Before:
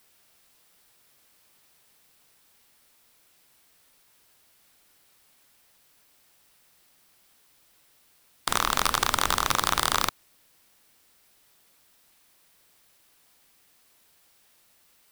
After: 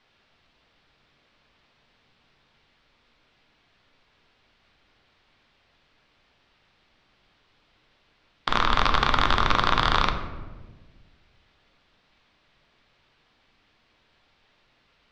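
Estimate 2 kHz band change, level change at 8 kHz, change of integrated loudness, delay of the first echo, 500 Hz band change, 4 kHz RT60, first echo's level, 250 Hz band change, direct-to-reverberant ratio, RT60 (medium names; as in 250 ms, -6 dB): +3.5 dB, -16.0 dB, +1.5 dB, no echo, +4.0 dB, 0.75 s, no echo, +6.0 dB, 5.5 dB, 1.4 s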